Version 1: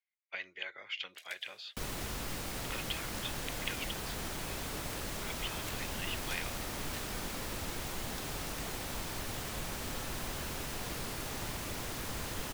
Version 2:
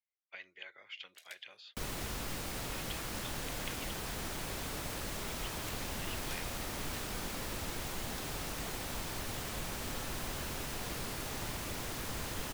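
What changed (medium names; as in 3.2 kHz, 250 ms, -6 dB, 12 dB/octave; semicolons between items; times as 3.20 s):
speech -7.5 dB; reverb: off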